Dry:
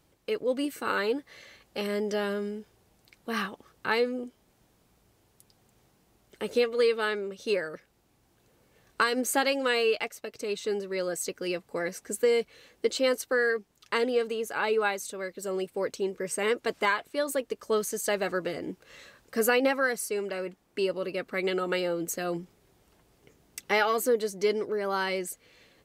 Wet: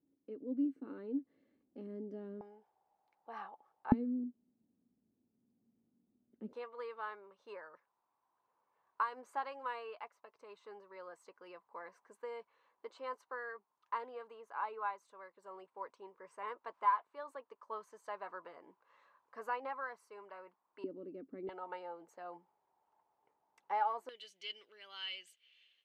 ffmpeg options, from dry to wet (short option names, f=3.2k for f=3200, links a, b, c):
-af "asetnsamples=n=441:p=0,asendcmd='2.41 bandpass f 830;3.92 bandpass f 240;6.53 bandpass f 1000;20.84 bandpass f 280;21.49 bandpass f 890;24.09 bandpass f 3000',bandpass=f=270:t=q:w=7.3:csg=0"